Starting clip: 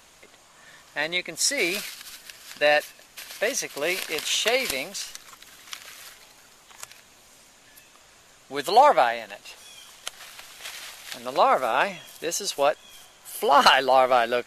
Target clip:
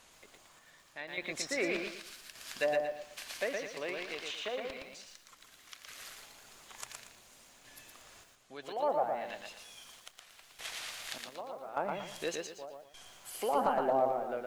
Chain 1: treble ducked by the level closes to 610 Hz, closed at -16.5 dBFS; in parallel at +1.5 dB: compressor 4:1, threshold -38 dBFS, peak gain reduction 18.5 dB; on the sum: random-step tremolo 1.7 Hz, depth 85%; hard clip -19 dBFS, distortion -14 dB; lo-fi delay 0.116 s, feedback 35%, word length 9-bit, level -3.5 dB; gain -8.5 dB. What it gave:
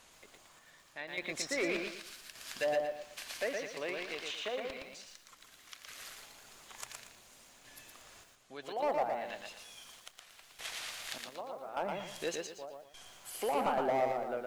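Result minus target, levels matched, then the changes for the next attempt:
hard clip: distortion +21 dB
change: hard clip -12.5 dBFS, distortion -35 dB

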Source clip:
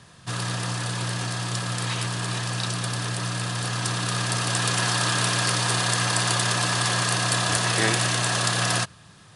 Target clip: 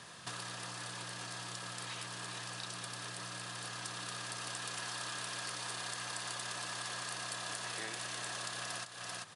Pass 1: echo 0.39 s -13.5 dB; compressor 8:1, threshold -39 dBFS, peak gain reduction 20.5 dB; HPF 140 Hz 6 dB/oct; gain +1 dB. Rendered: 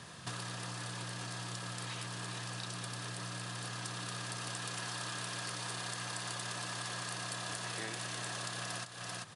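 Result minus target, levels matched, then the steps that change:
125 Hz band +7.0 dB
change: HPF 430 Hz 6 dB/oct

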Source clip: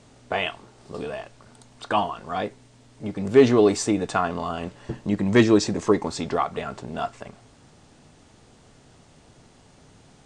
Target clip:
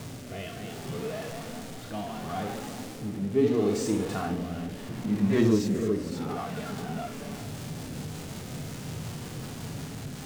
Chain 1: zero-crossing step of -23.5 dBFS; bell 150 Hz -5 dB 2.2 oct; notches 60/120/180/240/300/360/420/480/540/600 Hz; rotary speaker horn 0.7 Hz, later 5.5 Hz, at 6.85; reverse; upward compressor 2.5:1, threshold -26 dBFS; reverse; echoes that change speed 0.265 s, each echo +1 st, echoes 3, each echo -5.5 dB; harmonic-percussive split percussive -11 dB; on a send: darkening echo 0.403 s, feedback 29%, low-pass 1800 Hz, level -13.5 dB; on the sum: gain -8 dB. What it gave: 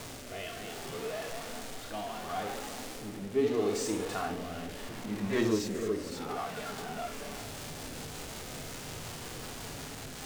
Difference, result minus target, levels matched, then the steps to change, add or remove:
125 Hz band -5.5 dB
change: bell 150 Hz +6 dB 2.2 oct

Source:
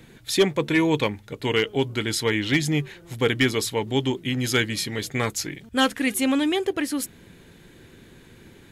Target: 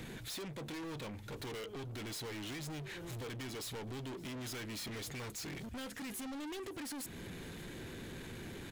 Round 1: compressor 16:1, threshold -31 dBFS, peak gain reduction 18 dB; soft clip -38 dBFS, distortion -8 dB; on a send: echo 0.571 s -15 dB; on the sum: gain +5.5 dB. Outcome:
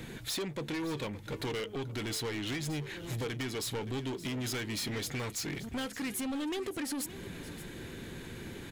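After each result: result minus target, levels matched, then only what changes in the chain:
echo-to-direct +7.5 dB; soft clip: distortion -5 dB
change: echo 0.571 s -22.5 dB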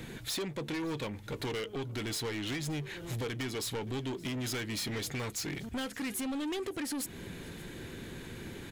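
soft clip: distortion -5 dB
change: soft clip -47.5 dBFS, distortion -3 dB

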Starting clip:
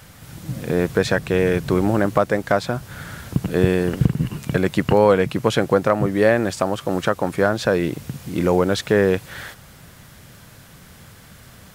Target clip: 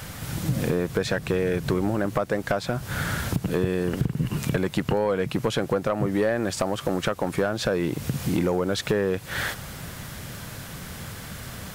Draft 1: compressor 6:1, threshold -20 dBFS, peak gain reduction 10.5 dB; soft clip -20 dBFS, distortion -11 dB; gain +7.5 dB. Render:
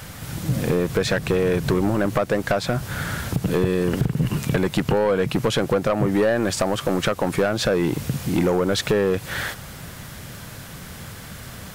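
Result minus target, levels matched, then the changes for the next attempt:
compressor: peak gain reduction -6 dB
change: compressor 6:1, threshold -27 dBFS, peak gain reduction 16.5 dB

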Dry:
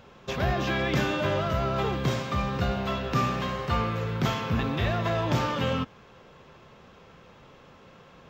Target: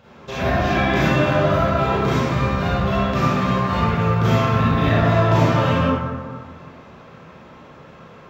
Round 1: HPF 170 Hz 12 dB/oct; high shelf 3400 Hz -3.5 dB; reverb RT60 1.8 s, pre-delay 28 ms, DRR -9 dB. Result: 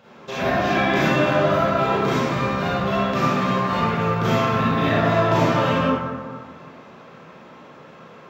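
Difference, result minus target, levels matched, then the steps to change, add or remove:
125 Hz band -4.5 dB
change: HPF 54 Hz 12 dB/oct

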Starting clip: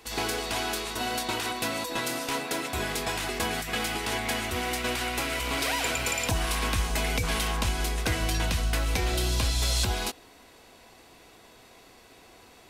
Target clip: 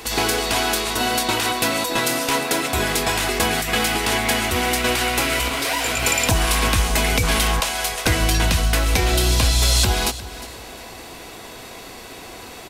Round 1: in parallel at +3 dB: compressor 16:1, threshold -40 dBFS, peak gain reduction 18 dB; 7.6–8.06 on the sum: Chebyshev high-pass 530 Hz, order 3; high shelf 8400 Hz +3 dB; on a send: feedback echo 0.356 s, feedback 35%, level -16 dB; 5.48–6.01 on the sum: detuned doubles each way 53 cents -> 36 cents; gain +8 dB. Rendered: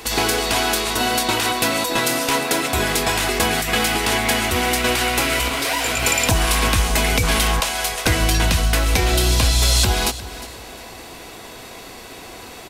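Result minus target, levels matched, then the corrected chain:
compressor: peak gain reduction -6.5 dB
in parallel at +3 dB: compressor 16:1, threshold -47 dBFS, peak gain reduction 24.5 dB; 7.6–8.06 on the sum: Chebyshev high-pass 530 Hz, order 3; high shelf 8400 Hz +3 dB; on a send: feedback echo 0.356 s, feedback 35%, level -16 dB; 5.48–6.01 on the sum: detuned doubles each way 53 cents -> 36 cents; gain +8 dB

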